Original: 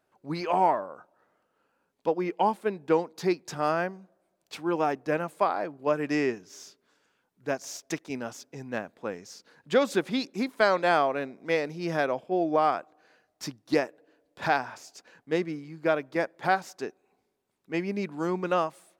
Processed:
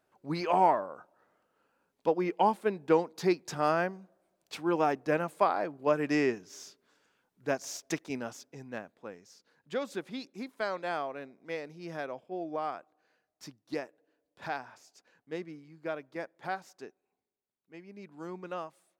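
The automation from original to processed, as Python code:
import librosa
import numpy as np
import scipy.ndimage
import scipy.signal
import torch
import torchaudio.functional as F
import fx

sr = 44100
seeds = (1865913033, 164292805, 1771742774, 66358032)

y = fx.gain(x, sr, db=fx.line((8.05, -1.0), (9.19, -11.0), (16.81, -11.0), (17.83, -20.0), (18.2, -12.5)))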